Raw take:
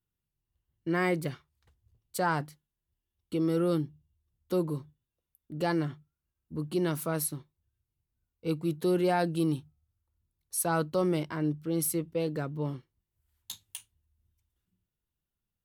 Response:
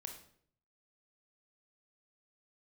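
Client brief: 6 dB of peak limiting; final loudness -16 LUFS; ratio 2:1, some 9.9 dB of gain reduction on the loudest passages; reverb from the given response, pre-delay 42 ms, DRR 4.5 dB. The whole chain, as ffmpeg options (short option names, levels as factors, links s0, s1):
-filter_complex "[0:a]acompressor=threshold=0.00794:ratio=2,alimiter=level_in=2.37:limit=0.0631:level=0:latency=1,volume=0.422,asplit=2[s0][s1];[1:a]atrim=start_sample=2205,adelay=42[s2];[s1][s2]afir=irnorm=-1:irlink=0,volume=0.944[s3];[s0][s3]amix=inputs=2:normalize=0,volume=17.8"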